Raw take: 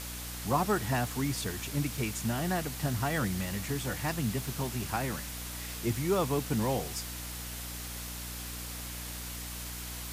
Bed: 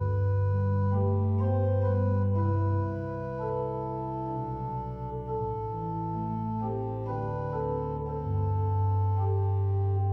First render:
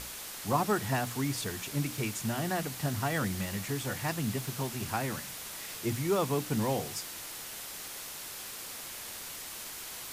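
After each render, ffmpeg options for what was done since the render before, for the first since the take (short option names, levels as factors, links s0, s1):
-af "bandreject=f=60:t=h:w=6,bandreject=f=120:t=h:w=6,bandreject=f=180:t=h:w=6,bandreject=f=240:t=h:w=6,bandreject=f=300:t=h:w=6"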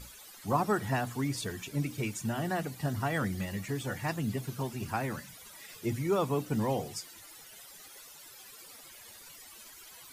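-af "afftdn=nr=15:nf=-43"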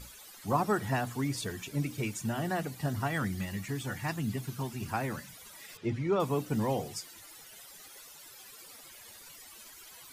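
-filter_complex "[0:a]asettb=1/sr,asplit=3[s0][s1][s2];[s0]atrim=end=3.074[s3];[s1]atrim=start=3.07:end=4.86,asetpts=PTS-STARTPTS,afade=t=in:d=0.004:c=qsin,afade=t=out:st=1.786:d=0.004:c=qsin,equalizer=f=520:t=o:w=0.77:g=-6[s4];[s2]atrim=start=4.856[s5];[s3][s4]acrossfade=d=0.004:c1=hsin:c2=qsin[s6];[s6][s5]acrossfade=d=0.004:c1=qsin:c2=hsin,asettb=1/sr,asplit=3[s7][s8][s9];[s7]atrim=end=5.774[s10];[s8]atrim=start=5.77:end=6.2,asetpts=PTS-STARTPTS,afade=t=in:d=0.004:c=qsin,afade=t=out:st=0.426:d=0.004:c=qsin,lowpass=3700[s11];[s9]atrim=start=6.196[s12];[s10][s11]acrossfade=d=0.004:c1=hsin:c2=qsin[s13];[s13][s12]acrossfade=d=0.004:c1=qsin:c2=hsin"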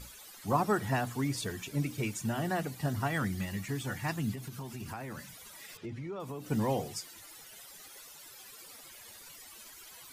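-filter_complex "[0:a]asettb=1/sr,asplit=3[s0][s1][s2];[s0]atrim=end=4.334[s3];[s1]atrim=start=4.33:end=6.49,asetpts=PTS-STARTPTS,afade=t=in:d=0.004:c=qsin,afade=t=out:st=2.156:d=0.004:c=qsin,acompressor=threshold=0.0141:ratio=6:attack=3.2:release=140:knee=1:detection=peak[s4];[s2]atrim=start=6.486[s5];[s3][s4]acrossfade=d=0.004:c1=hsin:c2=qsin[s6];[s6][s5]acrossfade=d=0.004:c1=qsin:c2=hsin"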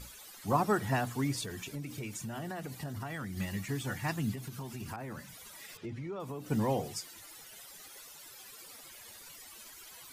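-filter_complex "[0:a]asettb=1/sr,asplit=3[s0][s1][s2];[s0]atrim=end=1.434[s3];[s1]atrim=start=1.43:end=3.37,asetpts=PTS-STARTPTS,afade=t=in:d=0.004:c=qsin,afade=t=out:st=1.936:d=0.004:c=qsin,acompressor=threshold=0.0158:ratio=6:attack=3.2:release=140:knee=1:detection=peak[s4];[s2]atrim=start=3.366[s5];[s3][s4]acrossfade=d=0.004:c1=hsin:c2=qsin[s6];[s6][s5]acrossfade=d=0.004:c1=qsin:c2=hsin,asettb=1/sr,asplit=3[s7][s8][s9];[s7]atrim=end=4.964[s10];[s8]atrim=start=4.96:end=6.84,asetpts=PTS-STARTPTS,afade=t=in:d=0.004:c=qsin,afade=t=out:st=1.876:d=0.004:c=qsin,adynamicequalizer=threshold=0.00282:dfrequency=1800:dqfactor=0.7:tfrequency=1800:tqfactor=0.7:attack=5:release=100:ratio=0.375:range=2:mode=cutabove:tftype=highshelf[s11];[s9]atrim=start=6.836[s12];[s10][s11]acrossfade=d=0.004:c1=hsin:c2=qsin[s13];[s13][s12]acrossfade=d=0.004:c1=qsin:c2=hsin"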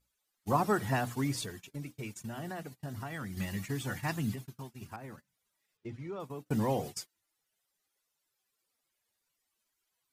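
-af "agate=range=0.0251:threshold=0.01:ratio=16:detection=peak"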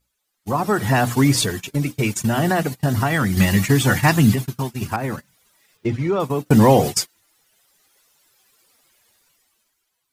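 -filter_complex "[0:a]asplit=2[s0][s1];[s1]alimiter=level_in=1.12:limit=0.0631:level=0:latency=1:release=116,volume=0.891,volume=1.19[s2];[s0][s2]amix=inputs=2:normalize=0,dynaudnorm=f=100:g=17:m=5.96"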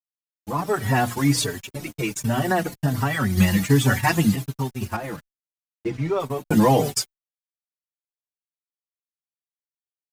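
-filter_complex "[0:a]aeval=exprs='sgn(val(0))*max(abs(val(0))-0.00944,0)':c=same,asplit=2[s0][s1];[s1]adelay=4.7,afreqshift=-1.3[s2];[s0][s2]amix=inputs=2:normalize=1"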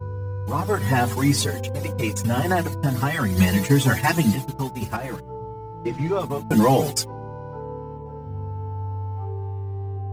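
-filter_complex "[1:a]volume=0.708[s0];[0:a][s0]amix=inputs=2:normalize=0"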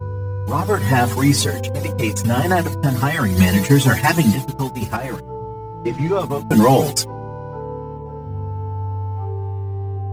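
-af "volume=1.68,alimiter=limit=0.891:level=0:latency=1"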